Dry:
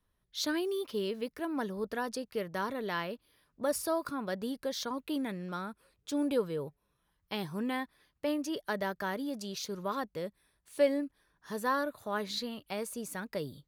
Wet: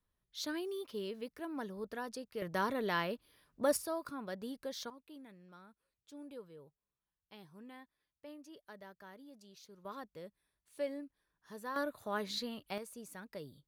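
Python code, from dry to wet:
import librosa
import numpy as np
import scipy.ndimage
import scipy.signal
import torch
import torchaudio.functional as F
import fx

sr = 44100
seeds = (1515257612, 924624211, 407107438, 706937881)

y = fx.gain(x, sr, db=fx.steps((0.0, -7.0), (2.42, 0.5), (3.77, -7.0), (4.9, -19.0), (9.85, -11.5), (11.76, -3.0), (12.78, -10.0)))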